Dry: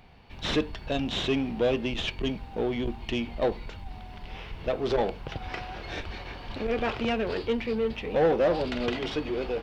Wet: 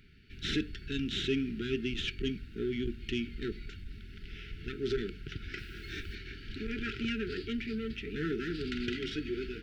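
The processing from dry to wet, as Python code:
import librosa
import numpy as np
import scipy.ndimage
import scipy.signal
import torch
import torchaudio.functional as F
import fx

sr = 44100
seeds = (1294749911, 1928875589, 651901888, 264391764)

y = fx.dmg_noise_colour(x, sr, seeds[0], colour='white', level_db=-65.0, at=(5.57, 6.14), fade=0.02)
y = fx.brickwall_bandstop(y, sr, low_hz=440.0, high_hz=1300.0)
y = y * librosa.db_to_amplitude(-4.0)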